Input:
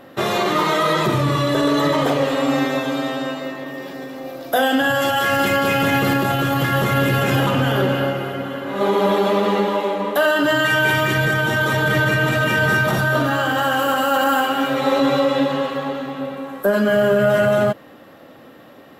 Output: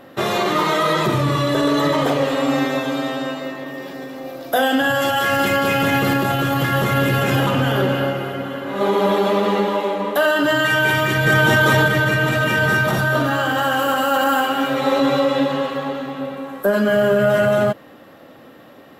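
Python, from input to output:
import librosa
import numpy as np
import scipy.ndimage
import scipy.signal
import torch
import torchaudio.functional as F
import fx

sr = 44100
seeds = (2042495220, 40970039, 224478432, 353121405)

y = fx.env_flatten(x, sr, amount_pct=100, at=(11.25, 11.86), fade=0.02)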